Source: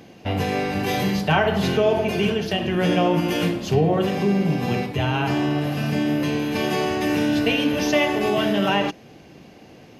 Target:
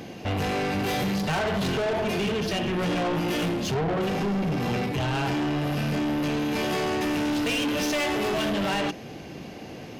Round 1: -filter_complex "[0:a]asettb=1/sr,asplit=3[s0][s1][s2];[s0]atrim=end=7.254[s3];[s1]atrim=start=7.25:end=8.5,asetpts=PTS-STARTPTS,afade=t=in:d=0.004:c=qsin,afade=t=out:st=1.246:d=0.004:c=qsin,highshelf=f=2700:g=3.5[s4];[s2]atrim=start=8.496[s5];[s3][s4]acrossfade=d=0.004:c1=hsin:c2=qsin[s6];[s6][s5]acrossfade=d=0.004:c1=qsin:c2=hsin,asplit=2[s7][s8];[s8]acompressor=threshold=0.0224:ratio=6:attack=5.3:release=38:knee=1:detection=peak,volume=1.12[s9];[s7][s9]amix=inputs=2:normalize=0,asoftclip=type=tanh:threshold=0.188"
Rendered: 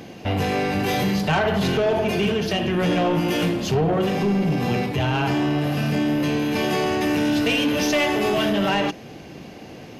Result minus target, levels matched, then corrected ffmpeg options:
saturation: distortion -8 dB
-filter_complex "[0:a]asettb=1/sr,asplit=3[s0][s1][s2];[s0]atrim=end=7.254[s3];[s1]atrim=start=7.25:end=8.5,asetpts=PTS-STARTPTS,afade=t=in:d=0.004:c=qsin,afade=t=out:st=1.246:d=0.004:c=qsin,highshelf=f=2700:g=3.5[s4];[s2]atrim=start=8.496[s5];[s3][s4]acrossfade=d=0.004:c1=hsin:c2=qsin[s6];[s6][s5]acrossfade=d=0.004:c1=qsin:c2=hsin,asplit=2[s7][s8];[s8]acompressor=threshold=0.0224:ratio=6:attack=5.3:release=38:knee=1:detection=peak,volume=1.12[s9];[s7][s9]amix=inputs=2:normalize=0,asoftclip=type=tanh:threshold=0.0668"

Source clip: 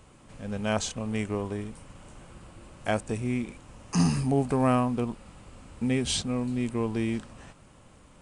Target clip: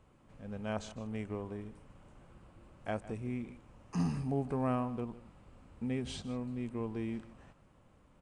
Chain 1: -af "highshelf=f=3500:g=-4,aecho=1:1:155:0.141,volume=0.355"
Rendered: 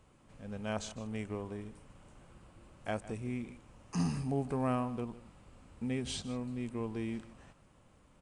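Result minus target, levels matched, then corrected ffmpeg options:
8 kHz band +6.5 dB
-af "highshelf=f=3500:g=-12.5,aecho=1:1:155:0.141,volume=0.355"

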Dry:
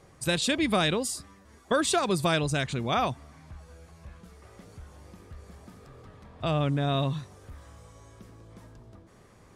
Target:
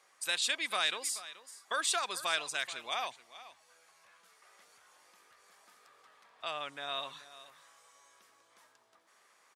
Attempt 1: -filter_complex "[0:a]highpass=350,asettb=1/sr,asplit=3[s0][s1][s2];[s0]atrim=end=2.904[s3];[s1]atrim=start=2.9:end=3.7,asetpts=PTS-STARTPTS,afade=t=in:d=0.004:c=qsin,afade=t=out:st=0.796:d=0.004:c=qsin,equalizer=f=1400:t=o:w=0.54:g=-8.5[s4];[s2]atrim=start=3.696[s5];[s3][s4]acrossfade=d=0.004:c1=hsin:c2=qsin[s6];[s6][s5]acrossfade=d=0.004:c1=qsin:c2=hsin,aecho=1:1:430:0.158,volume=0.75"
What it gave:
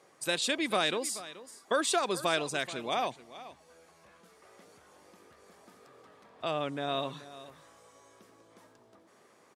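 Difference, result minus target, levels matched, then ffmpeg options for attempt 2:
250 Hz band +15.5 dB
-filter_complex "[0:a]highpass=1100,asettb=1/sr,asplit=3[s0][s1][s2];[s0]atrim=end=2.904[s3];[s1]atrim=start=2.9:end=3.7,asetpts=PTS-STARTPTS,afade=t=in:d=0.004:c=qsin,afade=t=out:st=0.796:d=0.004:c=qsin,equalizer=f=1400:t=o:w=0.54:g=-8.5[s4];[s2]atrim=start=3.696[s5];[s3][s4]acrossfade=d=0.004:c1=hsin:c2=qsin[s6];[s6][s5]acrossfade=d=0.004:c1=qsin:c2=hsin,aecho=1:1:430:0.158,volume=0.75"

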